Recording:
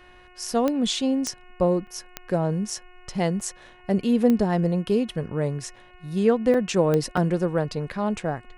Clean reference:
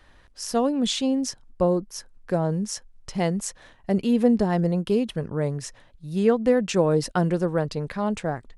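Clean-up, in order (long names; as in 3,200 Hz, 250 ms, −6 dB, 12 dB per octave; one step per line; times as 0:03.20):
click removal
hum removal 362 Hz, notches 8
repair the gap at 0:01.87/0:02.70/0:03.41/0:05.76/0:06.54/0:07.17, 3.4 ms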